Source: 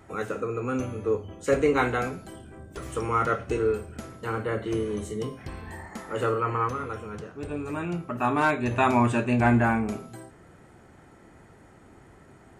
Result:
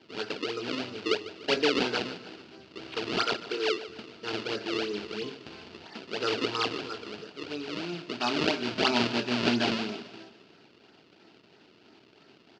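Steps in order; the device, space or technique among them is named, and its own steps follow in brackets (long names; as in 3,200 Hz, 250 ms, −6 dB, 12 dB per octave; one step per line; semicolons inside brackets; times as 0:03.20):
0:03.23–0:03.88: high-pass filter 360 Hz 12 dB per octave
circuit-bent sampling toy (sample-and-hold swept by an LFO 32×, swing 160% 3 Hz; loudspeaker in its box 500–5,000 Hz, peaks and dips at 540 Hz −10 dB, 790 Hz −5 dB, 1,100 Hz −8 dB, 1,900 Hz −5 dB, 2,800 Hz +7 dB, 4,600 Hz +7 dB)
low-shelf EQ 370 Hz +10.5 dB
repeating echo 148 ms, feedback 50%, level −15.5 dB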